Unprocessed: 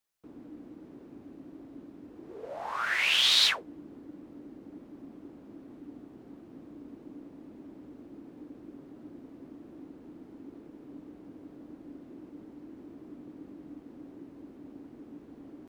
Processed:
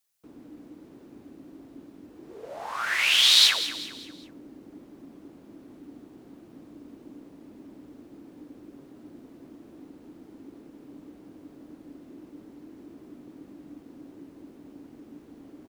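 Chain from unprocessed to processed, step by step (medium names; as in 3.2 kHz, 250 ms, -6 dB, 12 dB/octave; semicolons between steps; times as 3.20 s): treble shelf 3.4 kHz +9.5 dB; on a send: feedback delay 193 ms, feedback 42%, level -12.5 dB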